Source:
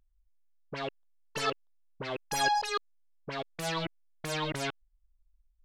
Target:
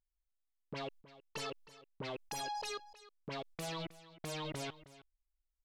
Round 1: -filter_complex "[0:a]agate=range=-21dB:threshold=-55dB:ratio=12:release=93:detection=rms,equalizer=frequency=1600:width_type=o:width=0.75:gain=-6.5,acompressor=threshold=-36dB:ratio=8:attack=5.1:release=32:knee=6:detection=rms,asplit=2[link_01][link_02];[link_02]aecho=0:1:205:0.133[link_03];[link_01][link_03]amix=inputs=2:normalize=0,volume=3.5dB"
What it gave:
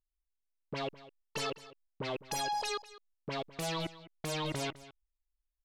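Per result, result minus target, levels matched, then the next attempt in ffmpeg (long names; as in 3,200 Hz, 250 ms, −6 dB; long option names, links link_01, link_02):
echo 110 ms early; downward compressor: peak gain reduction −6 dB
-filter_complex "[0:a]agate=range=-21dB:threshold=-55dB:ratio=12:release=93:detection=rms,equalizer=frequency=1600:width_type=o:width=0.75:gain=-6.5,acompressor=threshold=-36dB:ratio=8:attack=5.1:release=32:knee=6:detection=rms,asplit=2[link_01][link_02];[link_02]aecho=0:1:315:0.133[link_03];[link_01][link_03]amix=inputs=2:normalize=0,volume=3.5dB"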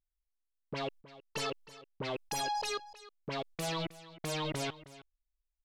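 downward compressor: peak gain reduction −6 dB
-filter_complex "[0:a]agate=range=-21dB:threshold=-55dB:ratio=12:release=93:detection=rms,equalizer=frequency=1600:width_type=o:width=0.75:gain=-6.5,acompressor=threshold=-43dB:ratio=8:attack=5.1:release=32:knee=6:detection=rms,asplit=2[link_01][link_02];[link_02]aecho=0:1:315:0.133[link_03];[link_01][link_03]amix=inputs=2:normalize=0,volume=3.5dB"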